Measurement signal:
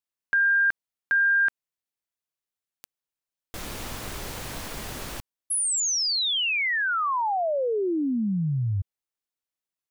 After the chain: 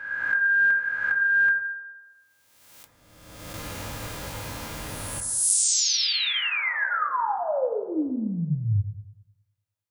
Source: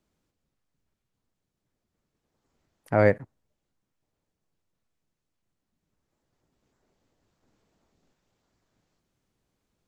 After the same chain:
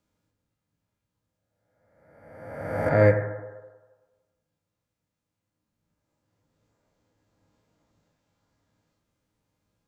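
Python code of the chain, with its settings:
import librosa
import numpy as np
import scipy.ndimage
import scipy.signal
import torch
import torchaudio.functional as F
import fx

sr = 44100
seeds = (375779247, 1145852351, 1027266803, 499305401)

y = fx.spec_swells(x, sr, rise_s=1.4)
y = fx.notch_comb(y, sr, f0_hz=370.0)
y = fx.rev_fdn(y, sr, rt60_s=1.3, lf_ratio=0.7, hf_ratio=0.25, size_ms=57.0, drr_db=2.5)
y = F.gain(torch.from_numpy(y), -3.0).numpy()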